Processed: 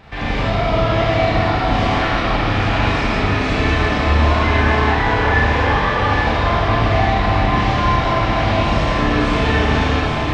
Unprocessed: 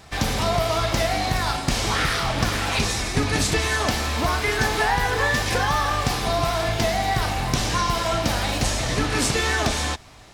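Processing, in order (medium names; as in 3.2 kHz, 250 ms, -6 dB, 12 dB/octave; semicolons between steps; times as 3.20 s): peaking EQ 2.6 kHz +6.5 dB 1.5 oct; reverse; upward compressor, threshold -23 dBFS; reverse; peak limiter -15 dBFS, peak gain reduction 9 dB; tape spacing loss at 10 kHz 33 dB; on a send: echo whose repeats swap between lows and highs 411 ms, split 1 kHz, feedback 73%, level -2.5 dB; on the sum: Schroeder reverb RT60 2.1 s, combs from 27 ms, DRR -7 dB; trim +2 dB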